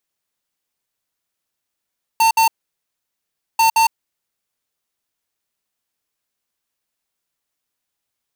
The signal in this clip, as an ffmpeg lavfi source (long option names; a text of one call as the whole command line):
ffmpeg -f lavfi -i "aevalsrc='0.224*(2*lt(mod(902*t,1),0.5)-1)*clip(min(mod(mod(t,1.39),0.17),0.11-mod(mod(t,1.39),0.17))/0.005,0,1)*lt(mod(t,1.39),0.34)':duration=2.78:sample_rate=44100" out.wav